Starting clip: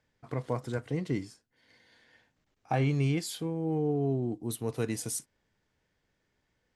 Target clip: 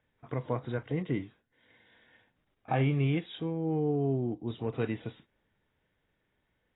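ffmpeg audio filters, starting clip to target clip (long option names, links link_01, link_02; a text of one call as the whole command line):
ffmpeg -i in.wav -ar 16000 -c:a aac -b:a 16k out.aac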